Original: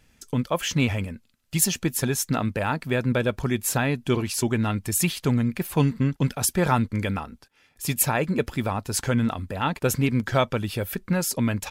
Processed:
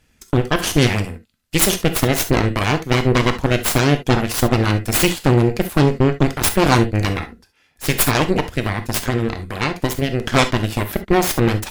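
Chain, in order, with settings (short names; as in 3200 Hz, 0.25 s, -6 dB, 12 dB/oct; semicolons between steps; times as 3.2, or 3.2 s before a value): 8.34–10.26 compressor 6:1, threshold -23 dBFS, peak gain reduction 6.5 dB; added harmonics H 7 -29 dB, 8 -9 dB, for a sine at -6 dBFS; non-linear reverb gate 90 ms flat, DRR 8 dB; gain +3 dB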